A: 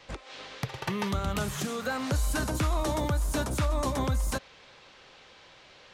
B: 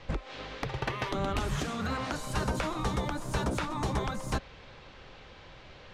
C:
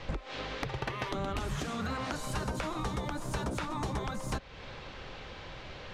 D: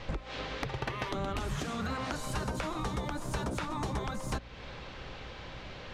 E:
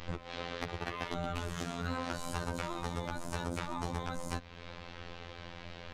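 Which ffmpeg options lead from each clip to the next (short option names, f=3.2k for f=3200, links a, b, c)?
-af "afftfilt=real='re*lt(hypot(re,im),0.126)':imag='im*lt(hypot(re,im),0.126)':win_size=1024:overlap=0.75,aemphasis=mode=reproduction:type=bsi,volume=2.5dB"
-af "acompressor=threshold=-41dB:ratio=2.5,volume=5.5dB"
-af "aeval=exprs='val(0)+0.00282*(sin(2*PI*60*n/s)+sin(2*PI*2*60*n/s)/2+sin(2*PI*3*60*n/s)/3+sin(2*PI*4*60*n/s)/4+sin(2*PI*5*60*n/s)/5)':c=same"
-af "afftfilt=real='hypot(re,im)*cos(PI*b)':imag='0':win_size=2048:overlap=0.75,volume=1dB"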